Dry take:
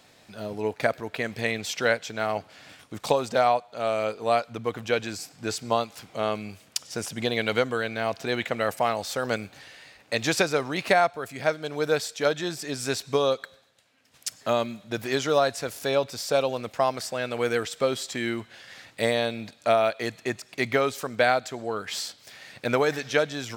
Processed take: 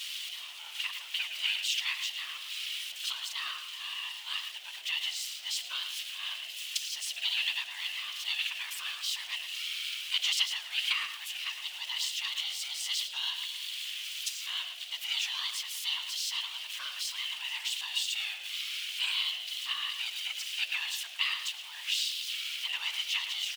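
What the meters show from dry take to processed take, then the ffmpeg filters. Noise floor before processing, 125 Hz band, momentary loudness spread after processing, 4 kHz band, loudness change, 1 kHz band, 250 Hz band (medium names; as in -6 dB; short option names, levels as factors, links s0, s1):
-57 dBFS, under -40 dB, 7 LU, +5.5 dB, -5.5 dB, -20.5 dB, under -40 dB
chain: -filter_complex "[0:a]aeval=exprs='val(0)+0.5*0.0376*sgn(val(0))':c=same,afftfilt=real='hypot(re,im)*cos(2*PI*random(0))':imag='hypot(re,im)*sin(2*PI*random(1))':win_size=512:overlap=0.75,aeval=exprs='val(0)*sin(2*PI*460*n/s)':c=same,highpass=f=3000:t=q:w=4.5,asplit=2[s0][s1];[s1]adelay=110,highpass=300,lowpass=3400,asoftclip=type=hard:threshold=0.0668,volume=0.398[s2];[s0][s2]amix=inputs=2:normalize=0"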